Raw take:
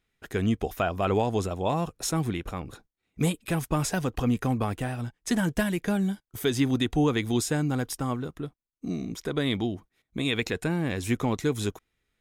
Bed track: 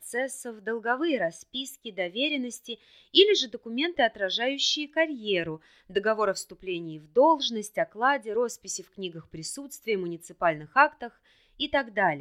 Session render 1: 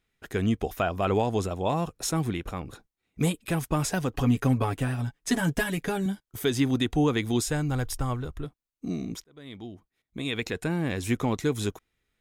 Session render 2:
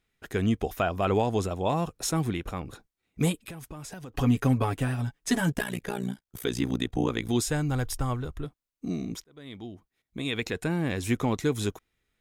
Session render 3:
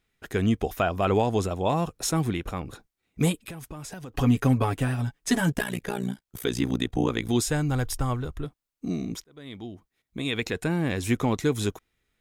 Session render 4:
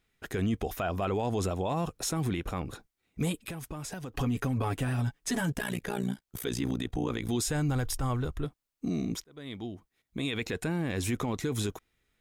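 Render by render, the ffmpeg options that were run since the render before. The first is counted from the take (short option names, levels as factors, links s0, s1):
-filter_complex "[0:a]asettb=1/sr,asplit=3[s0][s1][s2];[s0]atrim=end=4.144[s3];[s1]atrim=start=4.14:end=6.06,asetpts=PTS-STARTPTS,afade=t=in:d=0.004:c=qsin,afade=t=out:st=1.916:d=0.004:c=qsin,aecho=1:1:7.2:0.71,atrim=end_sample=84672[s4];[s2]atrim=start=6.056[s5];[s3][s4]acrossfade=d=0.004:c1=hsin:c2=qsin[s6];[s6][s5]acrossfade=d=0.004:c1=qsin:c2=hsin,asplit=3[s7][s8][s9];[s7]afade=t=out:st=7.46:d=0.02[s10];[s8]asubboost=boost=12:cutoff=59,afade=t=in:st=7.46:d=0.02,afade=t=out:st=8.44:d=0.02[s11];[s9]afade=t=in:st=8.44:d=0.02[s12];[s10][s11][s12]amix=inputs=3:normalize=0,asplit=2[s13][s14];[s13]atrim=end=9.24,asetpts=PTS-STARTPTS,afade=t=out:st=9.236:d=0.004:c=hsin[s15];[s14]atrim=start=9.24,asetpts=PTS-STARTPTS,afade=t=in:d=1.6[s16];[s15][s16]concat=n=2:v=0:a=1"
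-filter_complex "[0:a]asettb=1/sr,asplit=3[s0][s1][s2];[s0]atrim=end=3.454[s3];[s1]atrim=start=3.45:end=4.15,asetpts=PTS-STARTPTS,afade=t=in:d=0.004:c=qsin,afade=t=out:st=0.696:d=0.004:c=qsin,acompressor=threshold=0.0141:ratio=10:attack=3.2:release=140:knee=1:detection=peak[s4];[s2]atrim=start=4.146[s5];[s3][s4]acrossfade=d=0.004:c1=hsin:c2=qsin[s6];[s6][s5]acrossfade=d=0.004:c1=qsin:c2=hsin,asettb=1/sr,asplit=3[s7][s8][s9];[s7]atrim=end=5.524[s10];[s8]atrim=start=5.52:end=7.29,asetpts=PTS-STARTPTS,afade=t=in:d=0.004:c=qsin,afade=t=out:st=1.766:d=0.004:c=qsin,tremolo=f=60:d=0.947[s11];[s9]atrim=start=7.286[s12];[s10][s11]acrossfade=d=0.004:c1=hsin:c2=qsin[s13];[s13][s12]acrossfade=d=0.004:c1=qsin:c2=hsin"
-af "volume=1.26"
-af "alimiter=limit=0.0794:level=0:latency=1:release=30"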